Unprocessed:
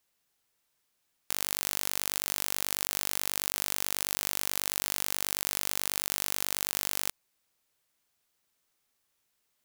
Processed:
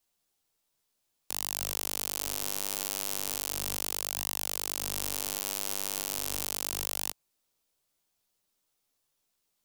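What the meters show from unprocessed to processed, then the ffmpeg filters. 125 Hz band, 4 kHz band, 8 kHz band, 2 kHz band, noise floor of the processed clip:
-4.0 dB, -2.0 dB, -1.0 dB, -5.5 dB, -79 dBFS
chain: -filter_complex "[0:a]flanger=delay=9.8:depth=9.5:regen=0:speed=0.35:shape=sinusoidal,acrossover=split=110|1500|2200[s0][s1][s2][s3];[s2]aeval=exprs='abs(val(0))':c=same[s4];[s0][s1][s4][s3]amix=inputs=4:normalize=0,volume=1.26"

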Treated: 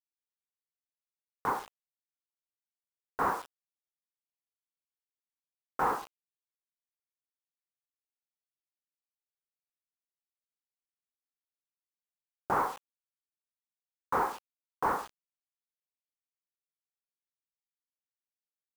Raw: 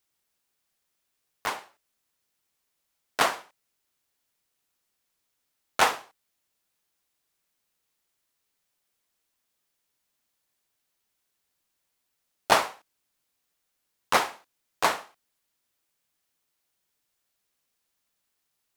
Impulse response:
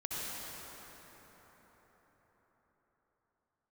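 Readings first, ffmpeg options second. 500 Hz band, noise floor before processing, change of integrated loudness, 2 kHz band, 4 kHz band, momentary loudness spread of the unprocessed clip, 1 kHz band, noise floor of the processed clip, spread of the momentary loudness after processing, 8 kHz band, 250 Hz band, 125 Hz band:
-6.0 dB, -79 dBFS, -6.0 dB, -10.5 dB, -22.5 dB, 15 LU, -3.5 dB, under -85 dBFS, 17 LU, -17.0 dB, -1.5 dB, -0.5 dB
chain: -af "acontrast=42,alimiter=limit=0.237:level=0:latency=1:release=11,highpass=100,afftfilt=real='re*gte(hypot(re,im),0.00631)':imag='im*gte(hypot(re,im),0.00631)':win_size=1024:overlap=0.75,aresample=11025,asoftclip=type=tanh:threshold=0.0841,aresample=44100,lowpass=f=1300:w=0.5412,lowpass=f=1300:w=1.3066,equalizer=f=640:w=5.3:g=-12.5,acrusher=bits=7:mix=0:aa=0.000001,volume=1.26"

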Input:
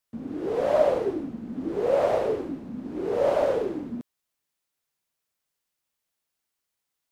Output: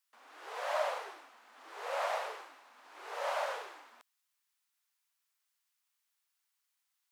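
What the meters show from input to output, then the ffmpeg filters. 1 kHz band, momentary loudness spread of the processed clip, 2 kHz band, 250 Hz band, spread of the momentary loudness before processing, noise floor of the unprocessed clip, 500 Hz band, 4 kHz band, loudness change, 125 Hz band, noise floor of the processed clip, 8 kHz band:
-5.0 dB, 20 LU, 0.0 dB, under -35 dB, 13 LU, -83 dBFS, -16.5 dB, 0.0 dB, -11.5 dB, under -40 dB, -83 dBFS, no reading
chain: -af "highpass=f=910:w=0.5412,highpass=f=910:w=1.3066"

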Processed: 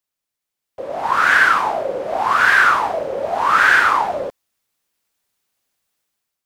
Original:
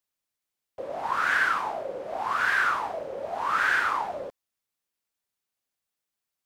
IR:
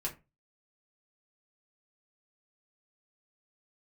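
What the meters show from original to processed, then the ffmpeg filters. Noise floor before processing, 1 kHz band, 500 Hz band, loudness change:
under -85 dBFS, +11.0 dB, +11.0 dB, +11.0 dB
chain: -af "dynaudnorm=f=600:g=3:m=3.35,volume=1.26"

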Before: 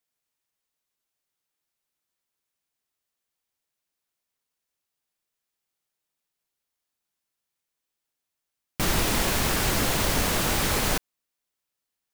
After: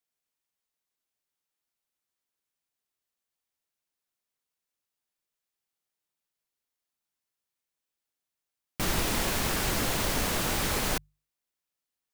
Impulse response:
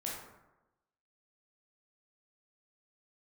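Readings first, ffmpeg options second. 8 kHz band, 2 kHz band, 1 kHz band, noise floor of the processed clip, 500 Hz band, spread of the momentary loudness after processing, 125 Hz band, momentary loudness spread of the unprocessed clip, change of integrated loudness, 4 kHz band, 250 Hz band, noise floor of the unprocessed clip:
-4.0 dB, -4.0 dB, -4.0 dB, under -85 dBFS, -4.0 dB, 5 LU, -5.0 dB, 5 LU, -4.0 dB, -4.0 dB, -4.0 dB, -85 dBFS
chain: -af "bandreject=f=50:t=h:w=6,bandreject=f=100:t=h:w=6,bandreject=f=150:t=h:w=6,volume=0.631"

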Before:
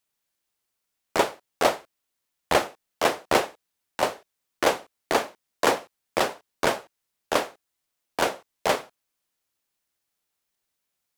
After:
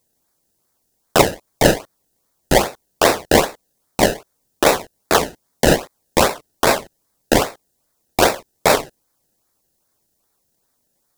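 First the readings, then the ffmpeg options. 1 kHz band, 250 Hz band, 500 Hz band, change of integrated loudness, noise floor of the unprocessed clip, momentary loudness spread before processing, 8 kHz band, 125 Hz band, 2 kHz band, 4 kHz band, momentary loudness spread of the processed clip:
+6.5 dB, +12.0 dB, +8.5 dB, +8.5 dB, -81 dBFS, 12 LU, +11.5 dB, +17.5 dB, +7.5 dB, +9.0 dB, 10 LU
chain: -filter_complex "[0:a]acrossover=split=4100[s0][s1];[s0]acrusher=samples=27:mix=1:aa=0.000001:lfo=1:lforange=27:lforate=2.5[s2];[s2][s1]amix=inputs=2:normalize=0,alimiter=level_in=4.47:limit=0.891:release=50:level=0:latency=1,volume=0.891"

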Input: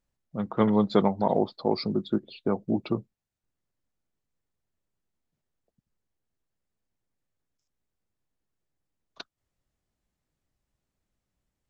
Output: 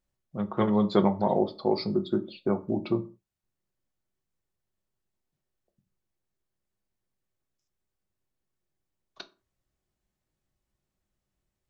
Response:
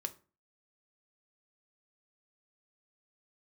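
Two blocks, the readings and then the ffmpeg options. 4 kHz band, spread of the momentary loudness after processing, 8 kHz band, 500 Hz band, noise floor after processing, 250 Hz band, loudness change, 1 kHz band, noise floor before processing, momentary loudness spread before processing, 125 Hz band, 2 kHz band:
-1.0 dB, 9 LU, no reading, 0.0 dB, -85 dBFS, -0.5 dB, -0.5 dB, -1.0 dB, -85 dBFS, 10 LU, 0.0 dB, -1.0 dB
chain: -filter_complex "[1:a]atrim=start_sample=2205,afade=t=out:st=0.26:d=0.01,atrim=end_sample=11907[s0];[0:a][s0]afir=irnorm=-1:irlink=0"

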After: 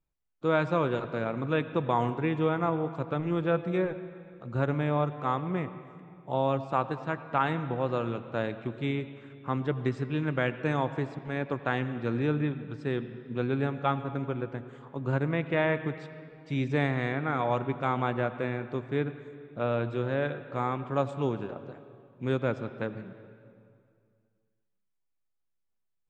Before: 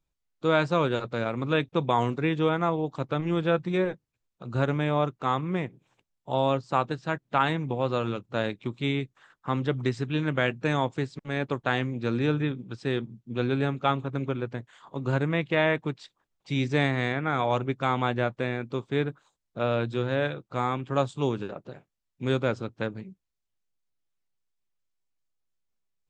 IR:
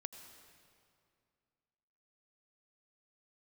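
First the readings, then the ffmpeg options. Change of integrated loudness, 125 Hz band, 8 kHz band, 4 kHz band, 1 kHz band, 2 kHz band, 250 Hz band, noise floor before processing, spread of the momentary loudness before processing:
-2.5 dB, -2.0 dB, no reading, -8.5 dB, -2.5 dB, -3.5 dB, -2.0 dB, -82 dBFS, 9 LU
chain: -filter_complex "[0:a]asplit=2[s0][s1];[1:a]atrim=start_sample=2205,lowpass=2800[s2];[s1][s2]afir=irnorm=-1:irlink=0,volume=1.88[s3];[s0][s3]amix=inputs=2:normalize=0,volume=0.355"

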